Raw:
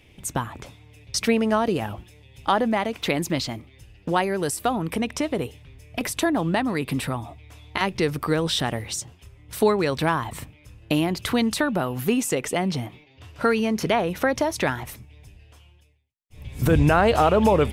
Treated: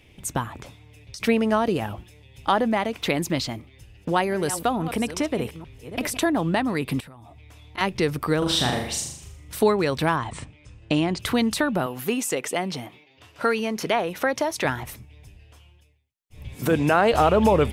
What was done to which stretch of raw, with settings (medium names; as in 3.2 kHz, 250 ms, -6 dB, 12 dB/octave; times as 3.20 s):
0.62–1.20 s: compression 10:1, threshold -35 dBFS
3.49–6.32 s: chunks repeated in reverse 431 ms, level -12 dB
7.00–7.78 s: compression, threshold -43 dBFS
8.38–9.56 s: flutter echo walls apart 6.8 m, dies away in 0.64 s
10.16–11.20 s: steep low-pass 9.2 kHz 72 dB/octave
11.86–14.65 s: high-pass 330 Hz 6 dB/octave
16.55–17.14 s: high-pass 200 Hz